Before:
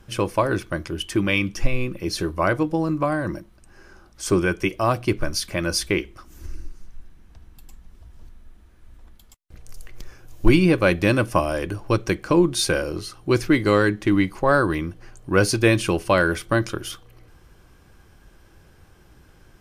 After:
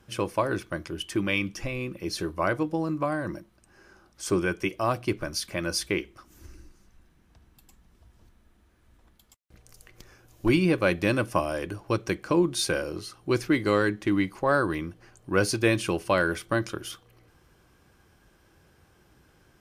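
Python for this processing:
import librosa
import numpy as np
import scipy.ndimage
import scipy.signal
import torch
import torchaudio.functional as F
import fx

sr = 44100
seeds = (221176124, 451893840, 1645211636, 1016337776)

y = fx.highpass(x, sr, hz=100.0, slope=6)
y = y * 10.0 ** (-5.0 / 20.0)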